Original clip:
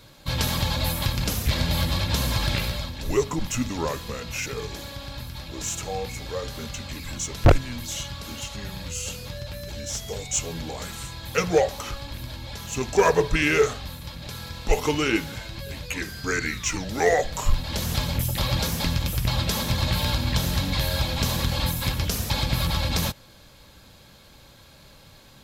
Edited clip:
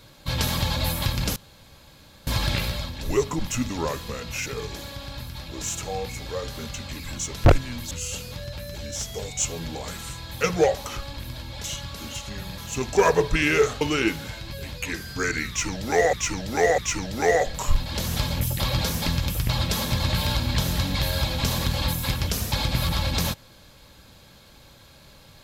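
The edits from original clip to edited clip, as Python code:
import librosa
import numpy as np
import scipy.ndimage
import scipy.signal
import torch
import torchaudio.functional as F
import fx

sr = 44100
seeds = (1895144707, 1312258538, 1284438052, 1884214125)

y = fx.edit(x, sr, fx.room_tone_fill(start_s=1.36, length_s=0.91),
    fx.move(start_s=7.91, length_s=0.94, to_s=12.58),
    fx.cut(start_s=13.81, length_s=1.08),
    fx.repeat(start_s=16.56, length_s=0.65, count=3), tone=tone)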